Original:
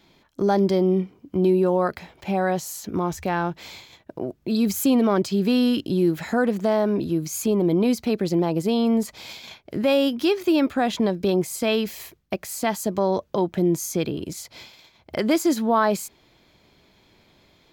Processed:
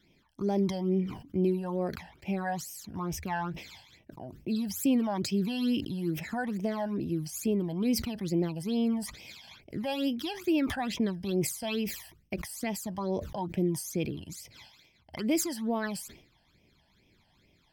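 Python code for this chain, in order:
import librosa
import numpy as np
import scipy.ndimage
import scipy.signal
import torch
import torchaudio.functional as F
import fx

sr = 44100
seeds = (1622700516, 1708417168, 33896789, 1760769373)

y = fx.phaser_stages(x, sr, stages=12, low_hz=380.0, high_hz=1400.0, hz=2.3, feedback_pct=35)
y = fx.sustainer(y, sr, db_per_s=96.0)
y = y * librosa.db_to_amplitude(-6.5)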